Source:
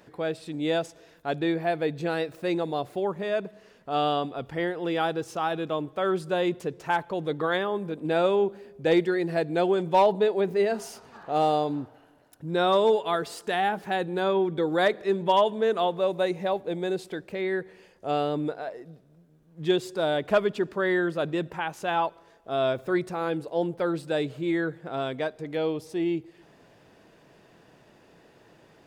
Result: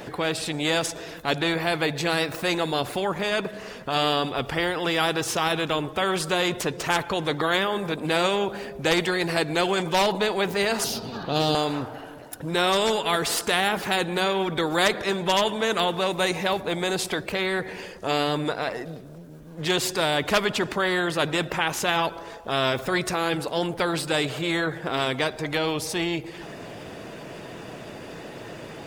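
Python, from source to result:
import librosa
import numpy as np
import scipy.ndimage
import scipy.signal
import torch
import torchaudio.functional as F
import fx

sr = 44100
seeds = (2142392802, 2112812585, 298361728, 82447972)

y = fx.spec_quant(x, sr, step_db=15)
y = fx.graphic_eq(y, sr, hz=(125, 250, 1000, 2000, 4000, 8000), db=(10, 10, -7, -11, 10, -12), at=(10.84, 11.55))
y = fx.spectral_comp(y, sr, ratio=2.0)
y = y * 10.0 ** (4.0 / 20.0)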